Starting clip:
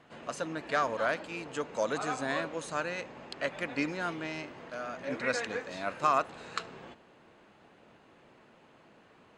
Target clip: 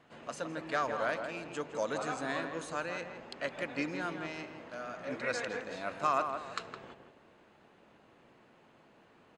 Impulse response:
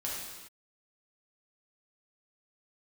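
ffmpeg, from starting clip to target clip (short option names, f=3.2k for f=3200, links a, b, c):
-filter_complex "[0:a]asplit=2[a][b];[b]adelay=163,lowpass=f=1.7k:p=1,volume=-6dB,asplit=2[c][d];[d]adelay=163,lowpass=f=1.7k:p=1,volume=0.38,asplit=2[e][f];[f]adelay=163,lowpass=f=1.7k:p=1,volume=0.38,asplit=2[g][h];[h]adelay=163,lowpass=f=1.7k:p=1,volume=0.38,asplit=2[i][j];[j]adelay=163,lowpass=f=1.7k:p=1,volume=0.38[k];[a][c][e][g][i][k]amix=inputs=6:normalize=0,volume=-3.5dB"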